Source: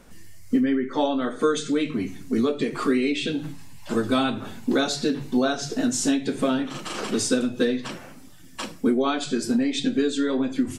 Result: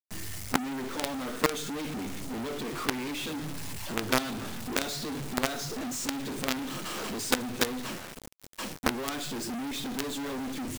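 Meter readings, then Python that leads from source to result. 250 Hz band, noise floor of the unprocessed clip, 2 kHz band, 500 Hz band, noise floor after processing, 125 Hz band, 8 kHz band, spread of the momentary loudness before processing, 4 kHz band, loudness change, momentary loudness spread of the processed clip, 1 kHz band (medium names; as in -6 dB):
-11.0 dB, -43 dBFS, -2.5 dB, -10.5 dB, -45 dBFS, -4.0 dB, -3.0 dB, 8 LU, -3.5 dB, -8.0 dB, 8 LU, -4.0 dB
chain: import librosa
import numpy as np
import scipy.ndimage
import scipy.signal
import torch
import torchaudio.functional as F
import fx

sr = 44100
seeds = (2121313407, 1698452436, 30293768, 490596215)

y = fx.quant_companded(x, sr, bits=2)
y = F.gain(torch.from_numpy(y), -9.0).numpy()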